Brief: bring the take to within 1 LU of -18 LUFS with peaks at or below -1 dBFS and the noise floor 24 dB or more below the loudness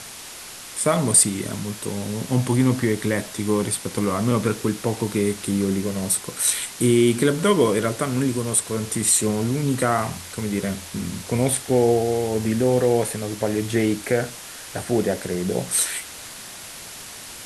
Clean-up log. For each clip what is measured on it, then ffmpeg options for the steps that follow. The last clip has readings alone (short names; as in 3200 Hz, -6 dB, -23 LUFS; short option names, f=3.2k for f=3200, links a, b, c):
noise floor -38 dBFS; noise floor target -46 dBFS; loudness -22.0 LUFS; peak -3.5 dBFS; loudness target -18.0 LUFS
-> -af "afftdn=nr=8:nf=-38"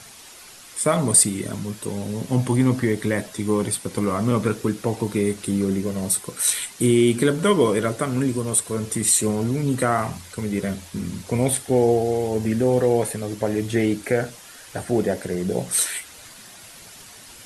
noise floor -44 dBFS; noise floor target -46 dBFS
-> -af "afftdn=nr=6:nf=-44"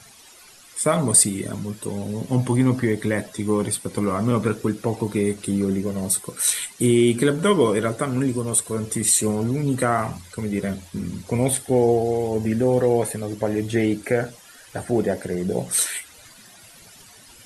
noise floor -48 dBFS; loudness -22.0 LUFS; peak -3.5 dBFS; loudness target -18.0 LUFS
-> -af "volume=4dB,alimiter=limit=-1dB:level=0:latency=1"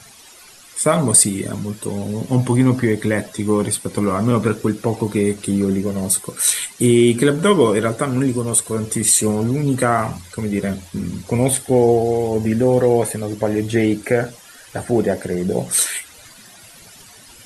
loudness -18.0 LUFS; peak -1.0 dBFS; noise floor -44 dBFS